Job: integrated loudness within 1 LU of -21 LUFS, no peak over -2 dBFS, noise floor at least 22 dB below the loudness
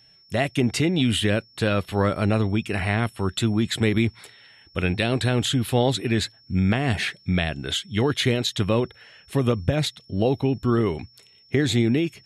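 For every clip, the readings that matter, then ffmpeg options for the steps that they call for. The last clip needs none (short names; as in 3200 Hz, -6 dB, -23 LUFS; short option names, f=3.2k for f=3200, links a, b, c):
steady tone 5400 Hz; tone level -53 dBFS; loudness -23.5 LUFS; peak -6.5 dBFS; loudness target -21.0 LUFS
-> -af "bandreject=f=5.4k:w=30"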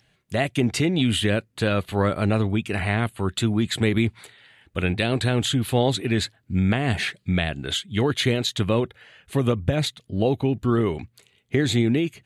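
steady tone none; loudness -23.5 LUFS; peak -6.5 dBFS; loudness target -21.0 LUFS
-> -af "volume=2.5dB"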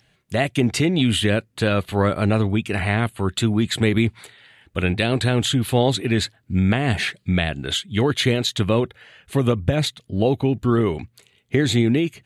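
loudness -21.0 LUFS; peak -4.0 dBFS; noise floor -63 dBFS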